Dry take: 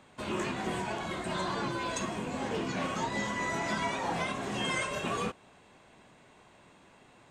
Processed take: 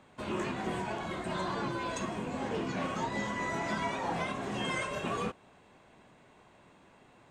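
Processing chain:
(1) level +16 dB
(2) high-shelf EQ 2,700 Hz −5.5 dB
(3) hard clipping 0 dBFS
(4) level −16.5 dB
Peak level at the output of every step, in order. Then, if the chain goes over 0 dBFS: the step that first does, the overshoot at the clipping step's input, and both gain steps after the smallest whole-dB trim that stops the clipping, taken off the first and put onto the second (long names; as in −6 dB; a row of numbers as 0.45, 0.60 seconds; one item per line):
−3.5, −4.5, −4.5, −21.0 dBFS
no step passes full scale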